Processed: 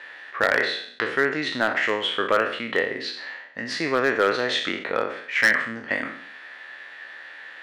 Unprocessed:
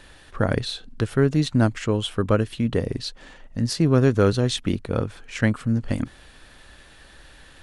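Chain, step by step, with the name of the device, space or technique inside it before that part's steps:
peak hold with a decay on every bin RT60 0.60 s
megaphone (band-pass filter 560–3,200 Hz; parametric band 1,900 Hz +11.5 dB 0.5 octaves; hard clipping −13.5 dBFS, distortion −14 dB)
level +3 dB

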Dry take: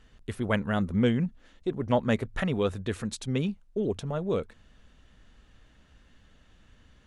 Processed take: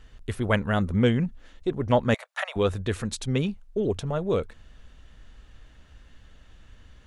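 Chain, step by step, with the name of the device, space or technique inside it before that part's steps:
low shelf boost with a cut just above (low-shelf EQ 100 Hz +5.5 dB; parametric band 200 Hz −4 dB 1.2 octaves)
0:02.14–0:02.56: Butterworth high-pass 580 Hz 72 dB per octave
level +4 dB

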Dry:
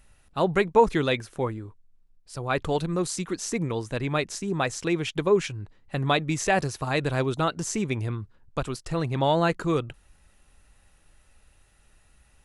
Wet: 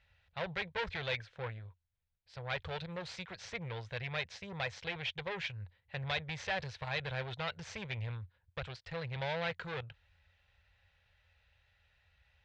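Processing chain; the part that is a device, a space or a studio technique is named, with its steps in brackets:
scooped metal amplifier (tube saturation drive 26 dB, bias 0.7; loudspeaker in its box 81–3,500 Hz, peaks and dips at 87 Hz +10 dB, 280 Hz −5 dB, 510 Hz +7 dB, 1,200 Hz −9 dB, 2,800 Hz −4 dB; guitar amp tone stack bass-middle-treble 10-0-10)
level +6 dB

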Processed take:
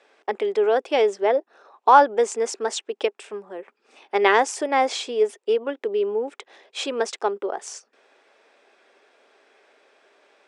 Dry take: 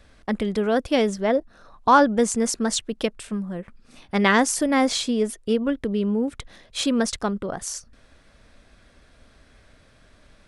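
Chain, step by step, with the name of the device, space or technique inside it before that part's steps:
phone speaker on a table (loudspeaker in its box 370–7,600 Hz, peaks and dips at 400 Hz +10 dB, 830 Hz +8 dB, 2,500 Hz +4 dB, 4,300 Hz −5 dB, 6,200 Hz −3 dB)
level −1.5 dB

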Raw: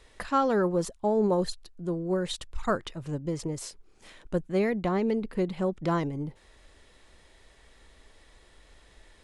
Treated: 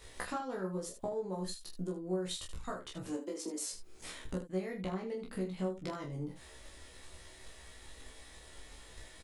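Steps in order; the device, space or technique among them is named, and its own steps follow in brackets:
0:03.07–0:03.67: Butterworth high-pass 200 Hz 96 dB per octave
high-shelf EQ 6,400 Hz +11 dB
drum-bus smash (transient designer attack +7 dB, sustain +2 dB; downward compressor 16 to 1, threshold −36 dBFS, peak gain reduction 21.5 dB; soft clipping −20 dBFS, distortion −31 dB)
double-tracking delay 16 ms −2 dB
ambience of single reflections 27 ms −4 dB, 78 ms −10 dB
level −2.5 dB

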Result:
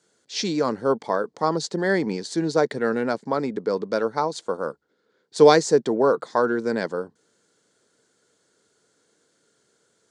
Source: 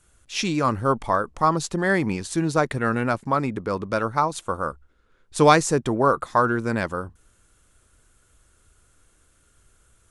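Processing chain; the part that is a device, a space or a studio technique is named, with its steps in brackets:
television speaker (loudspeaker in its box 170–7,600 Hz, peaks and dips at 450 Hz +8 dB, 1,200 Hz −8 dB, 2,600 Hz −9 dB, 4,500 Hz +7 dB)
level −1 dB

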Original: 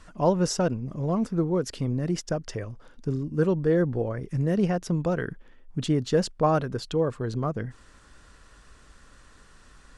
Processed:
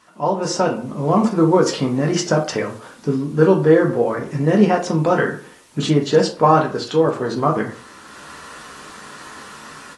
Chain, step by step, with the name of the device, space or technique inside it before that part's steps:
filmed off a television (band-pass filter 230–7,300 Hz; parametric band 940 Hz +4.5 dB 0.52 octaves; convolution reverb RT60 0.45 s, pre-delay 3 ms, DRR 0.5 dB; white noise bed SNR 34 dB; automatic gain control gain up to 16 dB; level −1 dB; AAC 32 kbit/s 24,000 Hz)

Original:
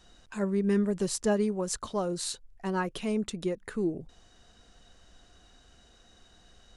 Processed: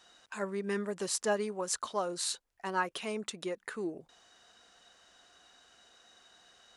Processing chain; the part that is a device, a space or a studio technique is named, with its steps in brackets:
filter by subtraction (in parallel: low-pass filter 1,100 Hz 12 dB per octave + polarity inversion)

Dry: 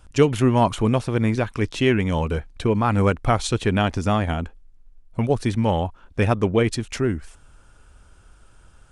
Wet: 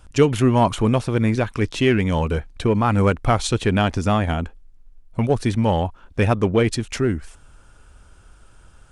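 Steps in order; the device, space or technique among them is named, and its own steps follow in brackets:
parallel distortion (in parallel at −11 dB: hard clipping −18.5 dBFS, distortion −9 dB)

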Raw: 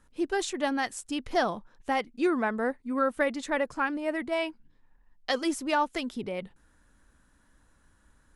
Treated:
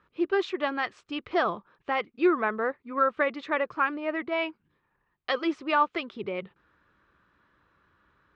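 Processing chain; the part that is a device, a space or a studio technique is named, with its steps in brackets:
guitar cabinet (loudspeaker in its box 100–3,900 Hz, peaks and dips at 250 Hz −9 dB, 380 Hz +6 dB, 780 Hz −3 dB, 1,200 Hz +9 dB, 2,400 Hz +4 dB)

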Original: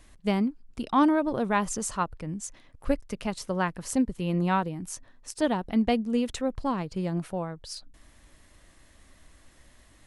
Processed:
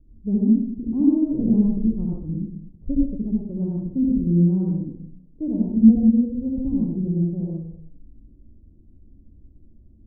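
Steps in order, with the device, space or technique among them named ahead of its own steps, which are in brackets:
next room (low-pass filter 330 Hz 24 dB per octave; convolution reverb RT60 0.65 s, pre-delay 63 ms, DRR −5 dB)
0:01.39–0:02.18: spectral tilt −1.5 dB per octave
level +2 dB

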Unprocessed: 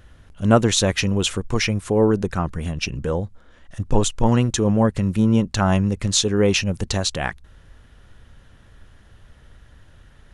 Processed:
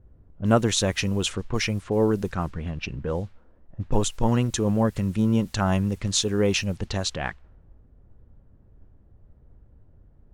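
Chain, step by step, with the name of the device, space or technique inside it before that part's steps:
cassette deck with a dynamic noise filter (white noise bed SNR 31 dB; low-pass that shuts in the quiet parts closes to 390 Hz, open at −16.5 dBFS)
level −4.5 dB

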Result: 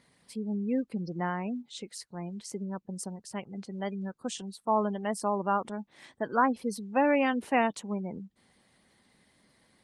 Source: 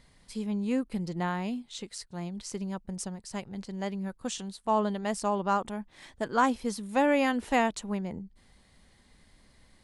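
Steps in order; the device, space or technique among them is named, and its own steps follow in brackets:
noise-suppressed video call (high-pass filter 150 Hz 12 dB per octave; gate on every frequency bin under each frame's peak −25 dB strong; Opus 24 kbit/s 48,000 Hz)

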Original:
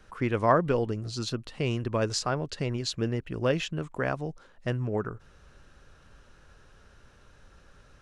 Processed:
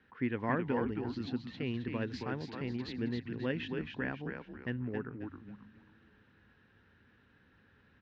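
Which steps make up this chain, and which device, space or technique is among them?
frequency-shifting delay pedal into a guitar cabinet (echo with shifted repeats 269 ms, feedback 37%, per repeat −110 Hz, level −5 dB; loudspeaker in its box 92–3,700 Hz, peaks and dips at 250 Hz +8 dB, 620 Hz −9 dB, 1,200 Hz −7 dB, 1,800 Hz +8 dB)
level −9 dB

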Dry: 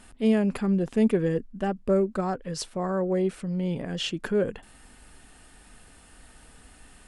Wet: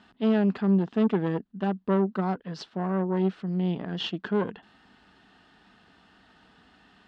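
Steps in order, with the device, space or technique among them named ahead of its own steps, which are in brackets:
guitar amplifier (tube saturation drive 20 dB, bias 0.8; bass and treble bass −6 dB, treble +5 dB; loudspeaker in its box 96–3,800 Hz, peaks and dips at 190 Hz +7 dB, 530 Hz −8 dB, 2,300 Hz −8 dB)
level +4.5 dB

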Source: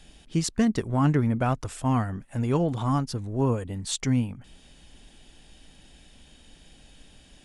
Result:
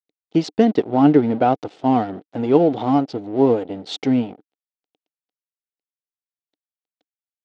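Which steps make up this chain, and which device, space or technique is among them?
blown loudspeaker (dead-zone distortion −40.5 dBFS; loudspeaker in its box 230–4,300 Hz, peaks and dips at 300 Hz +8 dB, 450 Hz +7 dB, 750 Hz +8 dB, 1,100 Hz −8 dB, 1,700 Hz −7 dB, 2,400 Hz −4 dB)
level +7.5 dB

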